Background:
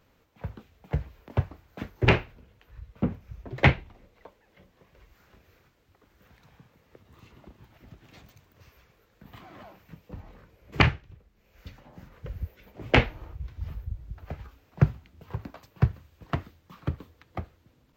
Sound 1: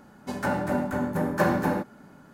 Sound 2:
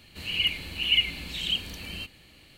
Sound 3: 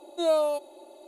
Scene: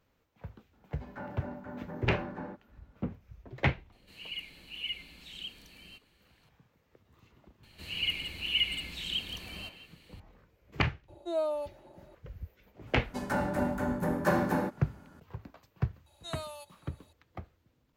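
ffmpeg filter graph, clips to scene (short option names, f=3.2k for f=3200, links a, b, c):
-filter_complex "[1:a]asplit=2[a][b];[2:a]asplit=2[c][d];[3:a]asplit=2[e][f];[0:a]volume=-8.5dB[g];[a]lowpass=2.7k[h];[c]equalizer=f=84:t=o:w=0.77:g=-8[i];[d]asplit=2[j][k];[k]adelay=170,highpass=300,lowpass=3.4k,asoftclip=type=hard:threshold=-20.5dB,volume=-7dB[l];[j][l]amix=inputs=2:normalize=0[m];[e]highshelf=f=3.1k:g=-10.5[n];[f]highpass=1.4k[o];[h]atrim=end=2.33,asetpts=PTS-STARTPTS,volume=-15.5dB,afade=t=in:d=0.004:c=hsin,afade=t=out:st=2.326:d=0.004:c=hsin,adelay=730[p];[i]atrim=end=2.57,asetpts=PTS-STARTPTS,volume=-14.5dB,afade=t=in:d=0.004:c=hsin,afade=t=out:st=2.566:d=0.004:c=hsin,adelay=3920[q];[m]atrim=end=2.57,asetpts=PTS-STARTPTS,volume=-6dB,afade=t=in:d=0.004:c=hsin,afade=t=out:st=2.566:d=0.004:c=hsin,adelay=7630[r];[n]atrim=end=1.07,asetpts=PTS-STARTPTS,volume=-7dB,afade=t=in:d=0.004:c=hsin,afade=t=out:st=1.066:d=0.004:c=hsin,adelay=11080[s];[b]atrim=end=2.33,asetpts=PTS-STARTPTS,volume=-4dB,afade=t=in:d=0.004:c=hsin,afade=t=out:st=2.326:d=0.004:c=hsin,adelay=12870[t];[o]atrim=end=1.07,asetpts=PTS-STARTPTS,volume=-6dB,afade=t=in:d=0.004:c=hsin,afade=t=out:st=1.066:d=0.004:c=hsin,adelay=16060[u];[g][p][q][r][s][t][u]amix=inputs=7:normalize=0"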